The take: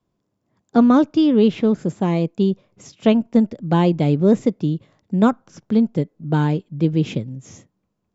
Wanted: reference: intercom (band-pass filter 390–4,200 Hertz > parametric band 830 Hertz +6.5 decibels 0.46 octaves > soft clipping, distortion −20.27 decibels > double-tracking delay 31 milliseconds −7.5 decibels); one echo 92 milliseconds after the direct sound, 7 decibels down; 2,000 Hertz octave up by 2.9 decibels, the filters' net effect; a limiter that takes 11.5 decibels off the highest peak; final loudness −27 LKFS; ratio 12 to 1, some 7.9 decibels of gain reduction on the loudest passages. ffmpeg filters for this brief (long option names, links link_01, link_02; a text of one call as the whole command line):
ffmpeg -i in.wav -filter_complex "[0:a]equalizer=frequency=2000:width_type=o:gain=4,acompressor=threshold=-17dB:ratio=12,alimiter=limit=-19dB:level=0:latency=1,highpass=390,lowpass=4200,equalizer=frequency=830:width_type=o:width=0.46:gain=6.5,aecho=1:1:92:0.447,asoftclip=threshold=-21.5dB,asplit=2[link_01][link_02];[link_02]adelay=31,volume=-7.5dB[link_03];[link_01][link_03]amix=inputs=2:normalize=0,volume=7.5dB" out.wav